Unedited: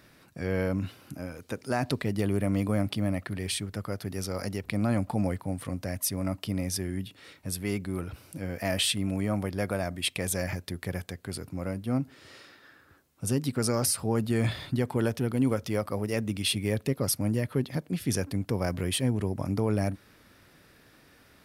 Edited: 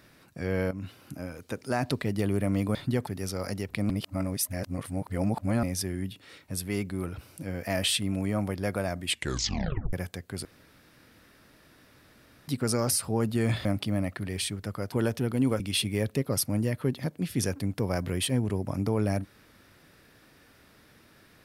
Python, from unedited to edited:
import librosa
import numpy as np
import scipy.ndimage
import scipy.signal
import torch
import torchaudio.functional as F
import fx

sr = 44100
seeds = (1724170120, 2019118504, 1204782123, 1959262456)

y = fx.edit(x, sr, fx.fade_in_from(start_s=0.71, length_s=0.42, curve='qsin', floor_db=-13.5),
    fx.swap(start_s=2.75, length_s=1.27, other_s=14.6, other_length_s=0.32),
    fx.reverse_span(start_s=4.85, length_s=1.73),
    fx.tape_stop(start_s=10.02, length_s=0.86),
    fx.room_tone_fill(start_s=11.4, length_s=2.03),
    fx.cut(start_s=15.6, length_s=0.71), tone=tone)